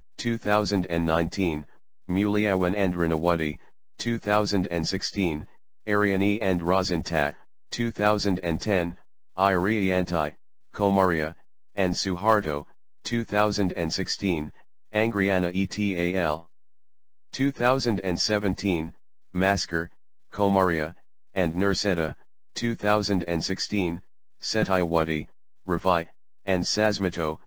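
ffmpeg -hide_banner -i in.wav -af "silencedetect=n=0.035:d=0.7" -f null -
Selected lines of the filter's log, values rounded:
silence_start: 16.37
silence_end: 17.34 | silence_duration: 0.97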